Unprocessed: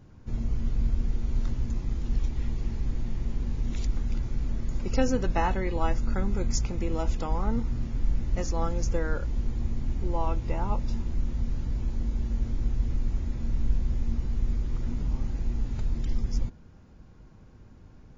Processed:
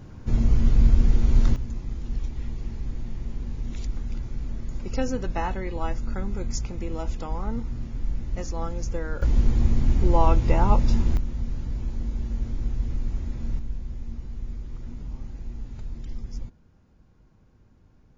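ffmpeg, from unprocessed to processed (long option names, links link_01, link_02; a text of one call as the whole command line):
ffmpeg -i in.wav -af "asetnsamples=nb_out_samples=441:pad=0,asendcmd='1.56 volume volume -2dB;9.22 volume volume 9dB;11.17 volume volume 0dB;13.59 volume volume -6.5dB',volume=9dB" out.wav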